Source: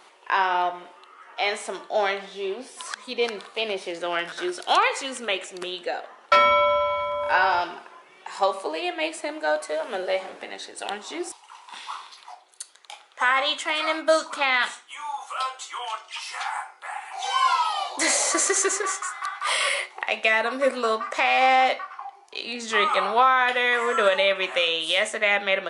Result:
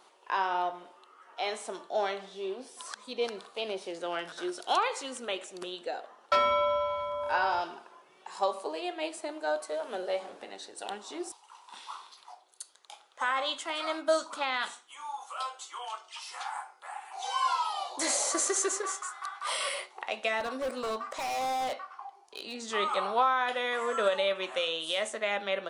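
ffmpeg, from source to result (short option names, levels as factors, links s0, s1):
-filter_complex "[0:a]asettb=1/sr,asplit=3[s0][s1][s2];[s0]atrim=end=20.404[s3];[s1]atrim=start=20.4:end=22.66,asetpts=PTS-STARTPTS,afade=t=in:d=0.004:c=qsin,afade=t=out:st=2.256:d=0.004:c=qsin,asoftclip=type=hard:threshold=0.075[s4];[s2]atrim=start=22.656[s5];[s3][s4]acrossfade=d=0.004:c1=hsin:c2=qsin[s6];[s6][s5]acrossfade=d=0.004:c1=qsin:c2=hsin,equalizer=f=2100:w=1.5:g=-7,volume=0.501"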